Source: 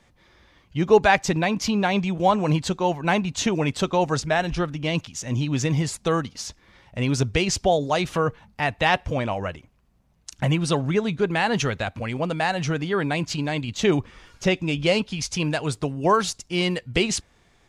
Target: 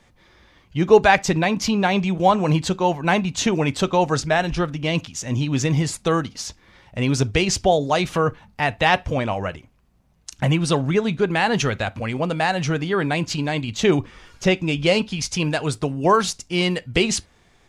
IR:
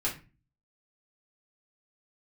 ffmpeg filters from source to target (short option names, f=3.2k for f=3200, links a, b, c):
-filter_complex "[0:a]asplit=2[a][b];[1:a]atrim=start_sample=2205,atrim=end_sample=3528[c];[b][c]afir=irnorm=-1:irlink=0,volume=-21.5dB[d];[a][d]amix=inputs=2:normalize=0,volume=2dB"